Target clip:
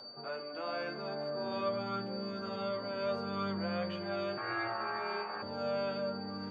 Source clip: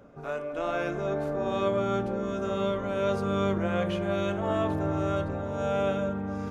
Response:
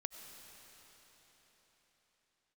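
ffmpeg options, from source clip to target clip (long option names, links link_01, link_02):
-filter_complex "[0:a]asettb=1/sr,asplit=3[link_01][link_02][link_03];[link_01]atrim=end=4.374[link_04];[link_02]atrim=start=4.37:end=5.42,asetpts=PTS-STARTPTS,afade=type=in:duration=0.004:curve=qsin,afade=type=out:start_time=1.046:duration=0.004:curve=qsin,aeval=exprs='val(0)*sin(2*PI*1000*n/s)':channel_layout=same[link_05];[link_03]atrim=start=5.416[link_06];[link_04][link_05]acrossfade=duration=0.004:curve1=hsin:curve2=qsin[link_07];[link_07][link_06]acrossfade=duration=0.004:curve1=qsin:curve2=hsin,highpass=190,highshelf=frequency=4600:gain=-8,acrossover=split=250|620|1500[link_08][link_09][link_10][link_11];[link_09]alimiter=level_in=13dB:limit=-24dB:level=0:latency=1,volume=-13dB[link_12];[link_10]acompressor=mode=upward:threshold=-47dB:ratio=2.5[link_13];[link_08][link_12][link_13][link_11]amix=inputs=4:normalize=0,aeval=exprs='val(0)+0.0112*sin(2*PI*4600*n/s)':channel_layout=same,acrossover=split=4200[link_14][link_15];[link_15]acompressor=threshold=-57dB:ratio=4:attack=1:release=60[link_16];[link_14][link_16]amix=inputs=2:normalize=0,flanger=delay=8.2:depth=1.6:regen=40:speed=0.68:shape=sinusoidal,volume=-1dB"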